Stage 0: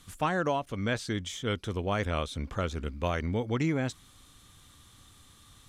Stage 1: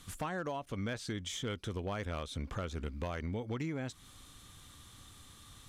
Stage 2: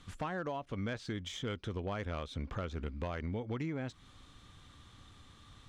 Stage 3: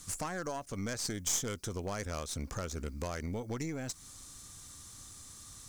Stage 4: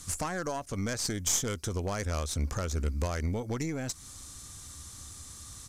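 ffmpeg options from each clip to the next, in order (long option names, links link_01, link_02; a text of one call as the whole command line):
ffmpeg -i in.wav -af "acompressor=threshold=-36dB:ratio=5,volume=31dB,asoftclip=hard,volume=-31dB,volume=1dB" out.wav
ffmpeg -i in.wav -af "adynamicsmooth=sensitivity=5:basefreq=4700" out.wav
ffmpeg -i in.wav -af "aexciter=amount=6.4:drive=9.2:freq=5000,aeval=exprs='0.126*(cos(1*acos(clip(val(0)/0.126,-1,1)))-cos(1*PI/2))+0.01*(cos(6*acos(clip(val(0)/0.126,-1,1)))-cos(6*PI/2))':channel_layout=same" out.wav
ffmpeg -i in.wav -af "aresample=32000,aresample=44100,equalizer=frequency=74:width=2.7:gain=8,volume=4dB" out.wav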